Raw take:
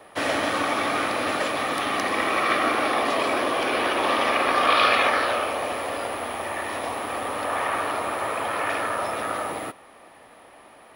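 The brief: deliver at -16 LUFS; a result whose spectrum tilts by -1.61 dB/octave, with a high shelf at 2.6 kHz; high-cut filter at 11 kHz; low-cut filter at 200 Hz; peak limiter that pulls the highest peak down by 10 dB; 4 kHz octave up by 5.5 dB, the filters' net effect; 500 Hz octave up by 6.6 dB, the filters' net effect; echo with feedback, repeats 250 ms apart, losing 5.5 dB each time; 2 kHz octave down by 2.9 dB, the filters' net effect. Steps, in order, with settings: high-pass 200 Hz; low-pass 11 kHz; peaking EQ 500 Hz +8.5 dB; peaking EQ 2 kHz -8 dB; treble shelf 2.6 kHz +5 dB; peaking EQ 4 kHz +6 dB; peak limiter -14 dBFS; feedback delay 250 ms, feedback 53%, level -5.5 dB; trim +6.5 dB

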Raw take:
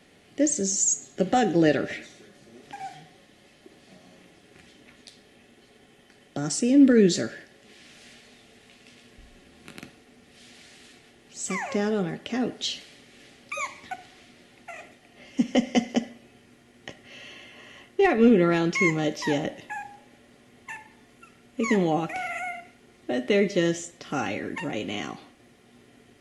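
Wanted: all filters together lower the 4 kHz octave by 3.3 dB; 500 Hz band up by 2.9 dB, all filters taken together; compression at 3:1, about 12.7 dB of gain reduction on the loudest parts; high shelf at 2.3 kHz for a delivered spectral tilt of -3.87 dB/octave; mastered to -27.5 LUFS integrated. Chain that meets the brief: peaking EQ 500 Hz +3.5 dB; treble shelf 2.3 kHz +4 dB; peaking EQ 4 kHz -9 dB; compression 3:1, threshold -29 dBFS; trim +5.5 dB

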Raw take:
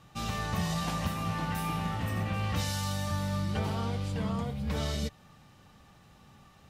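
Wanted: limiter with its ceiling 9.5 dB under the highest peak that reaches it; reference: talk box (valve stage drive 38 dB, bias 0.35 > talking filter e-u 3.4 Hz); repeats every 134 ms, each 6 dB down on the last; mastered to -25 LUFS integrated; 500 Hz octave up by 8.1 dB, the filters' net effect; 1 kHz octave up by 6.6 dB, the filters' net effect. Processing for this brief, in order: peaking EQ 500 Hz +8 dB; peaking EQ 1 kHz +6 dB; peak limiter -25.5 dBFS; feedback delay 134 ms, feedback 50%, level -6 dB; valve stage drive 38 dB, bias 0.35; talking filter e-u 3.4 Hz; trim +28.5 dB

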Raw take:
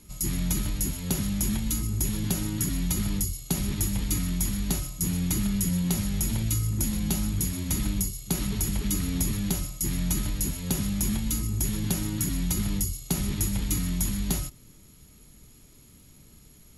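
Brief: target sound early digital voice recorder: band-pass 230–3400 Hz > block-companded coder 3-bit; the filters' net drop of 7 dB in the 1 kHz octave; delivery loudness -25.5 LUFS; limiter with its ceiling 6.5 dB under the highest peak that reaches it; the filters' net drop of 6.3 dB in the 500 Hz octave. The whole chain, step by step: peaking EQ 500 Hz -7.5 dB; peaking EQ 1 kHz -7 dB; peak limiter -20 dBFS; band-pass 230–3400 Hz; block-companded coder 3-bit; trim +12.5 dB

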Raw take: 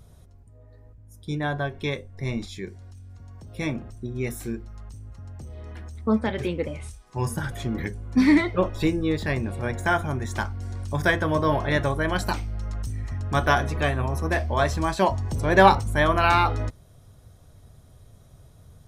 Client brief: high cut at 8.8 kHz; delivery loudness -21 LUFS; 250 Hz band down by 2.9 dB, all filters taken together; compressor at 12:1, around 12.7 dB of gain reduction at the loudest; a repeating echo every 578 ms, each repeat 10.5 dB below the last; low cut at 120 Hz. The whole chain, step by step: high-pass 120 Hz; low-pass 8.8 kHz; peaking EQ 250 Hz -3.5 dB; compression 12:1, threshold -23 dBFS; feedback delay 578 ms, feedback 30%, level -10.5 dB; trim +9.5 dB

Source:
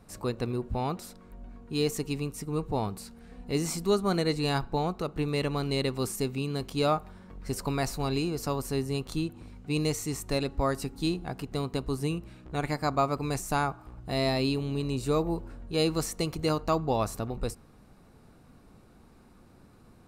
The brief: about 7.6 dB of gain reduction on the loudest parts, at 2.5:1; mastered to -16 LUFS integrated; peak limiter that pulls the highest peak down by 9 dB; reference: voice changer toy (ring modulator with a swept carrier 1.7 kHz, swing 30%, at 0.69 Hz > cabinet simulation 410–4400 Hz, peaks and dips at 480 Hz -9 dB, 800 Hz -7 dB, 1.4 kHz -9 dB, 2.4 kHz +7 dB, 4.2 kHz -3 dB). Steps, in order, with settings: compression 2.5:1, threshold -32 dBFS; peak limiter -28.5 dBFS; ring modulator with a swept carrier 1.7 kHz, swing 30%, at 0.69 Hz; cabinet simulation 410–4400 Hz, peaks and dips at 480 Hz -9 dB, 800 Hz -7 dB, 1.4 kHz -9 dB, 2.4 kHz +7 dB, 4.2 kHz -3 dB; trim +23 dB

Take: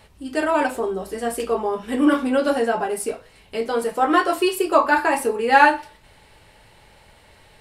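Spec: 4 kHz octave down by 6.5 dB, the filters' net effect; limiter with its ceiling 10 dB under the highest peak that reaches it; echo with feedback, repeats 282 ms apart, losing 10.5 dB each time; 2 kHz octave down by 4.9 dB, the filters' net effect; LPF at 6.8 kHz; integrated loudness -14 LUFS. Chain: low-pass 6.8 kHz; peaking EQ 2 kHz -6 dB; peaking EQ 4 kHz -6 dB; peak limiter -13.5 dBFS; feedback delay 282 ms, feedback 30%, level -10.5 dB; trim +10 dB

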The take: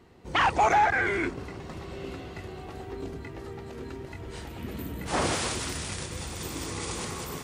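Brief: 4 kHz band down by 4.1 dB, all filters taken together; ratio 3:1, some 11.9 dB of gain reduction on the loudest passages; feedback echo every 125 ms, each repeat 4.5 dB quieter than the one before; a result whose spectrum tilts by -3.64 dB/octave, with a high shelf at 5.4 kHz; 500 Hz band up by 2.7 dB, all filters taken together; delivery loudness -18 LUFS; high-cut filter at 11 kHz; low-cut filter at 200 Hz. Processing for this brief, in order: high-pass 200 Hz; low-pass 11 kHz; peaking EQ 500 Hz +4 dB; peaking EQ 4 kHz -4 dB; treble shelf 5.4 kHz -4 dB; compression 3:1, threshold -34 dBFS; feedback delay 125 ms, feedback 60%, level -4.5 dB; trim +17.5 dB

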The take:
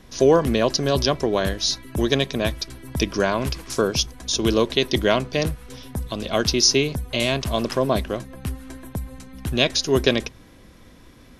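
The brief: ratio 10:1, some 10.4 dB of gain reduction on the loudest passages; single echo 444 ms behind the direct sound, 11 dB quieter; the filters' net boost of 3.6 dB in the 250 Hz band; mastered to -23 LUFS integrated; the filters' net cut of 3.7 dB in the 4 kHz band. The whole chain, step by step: peaking EQ 250 Hz +4.5 dB; peaking EQ 4 kHz -5 dB; compression 10:1, threshold -19 dBFS; delay 444 ms -11 dB; trim +3 dB

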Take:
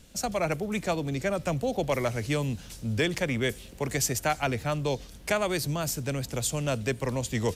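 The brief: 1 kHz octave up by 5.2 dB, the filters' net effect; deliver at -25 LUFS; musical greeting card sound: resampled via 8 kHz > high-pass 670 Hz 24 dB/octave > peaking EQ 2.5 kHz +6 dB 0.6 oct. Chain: peaking EQ 1 kHz +8 dB; resampled via 8 kHz; high-pass 670 Hz 24 dB/octave; peaking EQ 2.5 kHz +6 dB 0.6 oct; trim +4.5 dB

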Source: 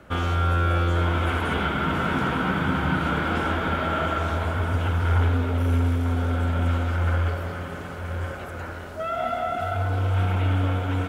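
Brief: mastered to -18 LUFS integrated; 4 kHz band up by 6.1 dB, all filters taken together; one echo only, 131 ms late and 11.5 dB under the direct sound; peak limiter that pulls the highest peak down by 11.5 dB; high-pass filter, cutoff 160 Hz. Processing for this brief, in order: high-pass 160 Hz; peaking EQ 4 kHz +8.5 dB; peak limiter -24 dBFS; delay 131 ms -11.5 dB; trim +14 dB

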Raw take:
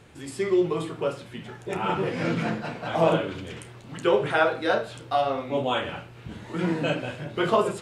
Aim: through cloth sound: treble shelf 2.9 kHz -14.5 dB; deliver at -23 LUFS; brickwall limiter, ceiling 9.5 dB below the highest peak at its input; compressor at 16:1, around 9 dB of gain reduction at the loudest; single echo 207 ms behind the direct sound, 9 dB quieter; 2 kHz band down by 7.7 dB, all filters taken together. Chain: peaking EQ 2 kHz -6 dB; compression 16:1, threshold -25 dBFS; peak limiter -24.5 dBFS; treble shelf 2.9 kHz -14.5 dB; delay 207 ms -9 dB; trim +12 dB

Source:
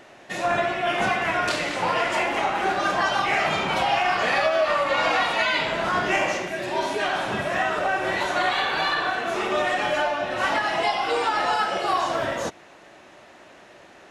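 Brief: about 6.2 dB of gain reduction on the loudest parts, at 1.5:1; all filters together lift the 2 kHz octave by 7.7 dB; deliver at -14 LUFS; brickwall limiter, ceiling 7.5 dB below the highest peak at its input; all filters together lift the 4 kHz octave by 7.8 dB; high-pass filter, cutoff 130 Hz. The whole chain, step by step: high-pass 130 Hz; peaking EQ 2 kHz +8 dB; peaking EQ 4 kHz +7 dB; compression 1.5:1, threshold -30 dBFS; trim +11 dB; peak limiter -6 dBFS

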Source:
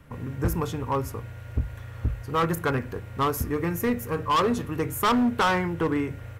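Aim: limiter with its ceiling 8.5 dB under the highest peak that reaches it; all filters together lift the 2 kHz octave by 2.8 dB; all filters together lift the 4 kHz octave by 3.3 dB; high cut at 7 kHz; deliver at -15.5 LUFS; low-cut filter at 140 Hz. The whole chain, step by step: high-pass 140 Hz; low-pass 7 kHz; peaking EQ 2 kHz +3 dB; peaking EQ 4 kHz +3.5 dB; trim +15.5 dB; peak limiter -5 dBFS

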